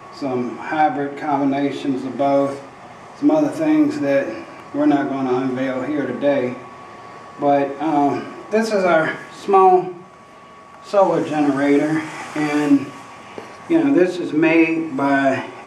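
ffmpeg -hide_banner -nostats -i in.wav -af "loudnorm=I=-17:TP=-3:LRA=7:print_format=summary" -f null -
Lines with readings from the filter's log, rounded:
Input Integrated:    -18.4 LUFS
Input True Peak:      -2.7 dBTP
Input LRA:             2.8 LU
Input Threshold:     -29.2 LUFS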